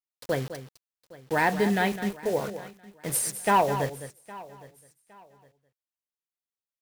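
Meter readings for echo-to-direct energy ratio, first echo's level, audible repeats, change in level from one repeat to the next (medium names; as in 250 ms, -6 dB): -11.0 dB, -11.5 dB, 4, no regular repeats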